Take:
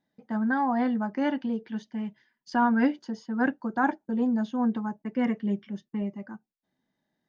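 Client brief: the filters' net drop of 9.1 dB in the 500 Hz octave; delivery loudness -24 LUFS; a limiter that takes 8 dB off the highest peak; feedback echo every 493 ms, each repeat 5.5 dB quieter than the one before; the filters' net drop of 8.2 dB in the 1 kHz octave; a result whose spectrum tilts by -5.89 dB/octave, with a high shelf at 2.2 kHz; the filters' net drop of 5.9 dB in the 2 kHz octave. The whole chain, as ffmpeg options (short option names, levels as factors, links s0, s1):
-af "equalizer=f=500:t=o:g=-9,equalizer=f=1000:t=o:g=-6.5,equalizer=f=2000:t=o:g=-6,highshelf=f=2200:g=3.5,alimiter=level_in=1.06:limit=0.0631:level=0:latency=1,volume=0.944,aecho=1:1:493|986|1479|1972|2465|2958|3451:0.531|0.281|0.149|0.079|0.0419|0.0222|0.0118,volume=2.51"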